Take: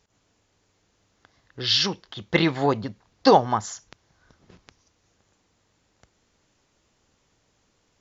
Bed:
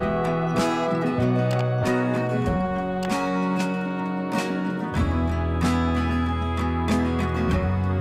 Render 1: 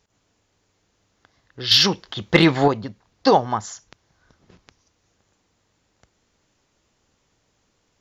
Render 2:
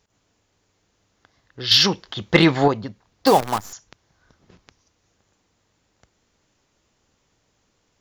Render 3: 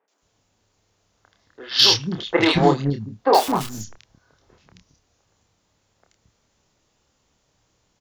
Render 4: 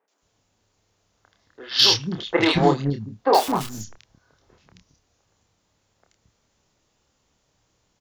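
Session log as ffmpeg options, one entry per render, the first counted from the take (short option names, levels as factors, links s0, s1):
-filter_complex "[0:a]asettb=1/sr,asplit=3[s0][s1][s2];[s0]atrim=end=1.714[s3];[s1]atrim=start=1.71:end=2.68,asetpts=PTS-STARTPTS,afade=t=in:d=0.004:c=qsin,afade=t=out:st=0.966:d=0.004:c=qsin,acontrast=82[s4];[s2]atrim=start=2.676[s5];[s3][s4]acrossfade=d=0.004:c1=hsin:c2=qsin[s6];[s6][s5]acrossfade=d=0.004:c1=qsin:c2=hsin"
-filter_complex "[0:a]asettb=1/sr,asplit=3[s0][s1][s2];[s0]atrim=end=3.264[s3];[s1]atrim=start=3.26:end=3.73,asetpts=PTS-STARTPTS,afade=t=in:d=0.004:c=qsin,afade=t=out:st=0.466:d=0.004:c=qsin,acrusher=bits=5:dc=4:mix=0:aa=0.000001[s4];[s2]atrim=start=3.726[s5];[s3][s4]acrossfade=d=0.004:c1=hsin:c2=qsin[s6];[s6][s5]acrossfade=d=0.004:c1=qsin:c2=hsin"
-filter_complex "[0:a]asplit=2[s0][s1];[s1]adelay=28,volume=0.531[s2];[s0][s2]amix=inputs=2:normalize=0,acrossover=split=300|1900[s3][s4][s5];[s5]adelay=80[s6];[s3]adelay=220[s7];[s7][s4][s6]amix=inputs=3:normalize=0"
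-af "volume=0.841"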